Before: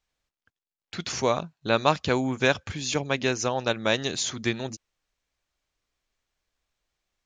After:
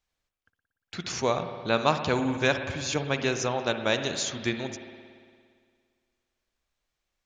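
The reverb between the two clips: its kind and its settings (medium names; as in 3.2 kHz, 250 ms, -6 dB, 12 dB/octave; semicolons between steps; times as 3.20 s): spring tank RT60 2 s, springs 57 ms, chirp 75 ms, DRR 7.5 dB; trim -2 dB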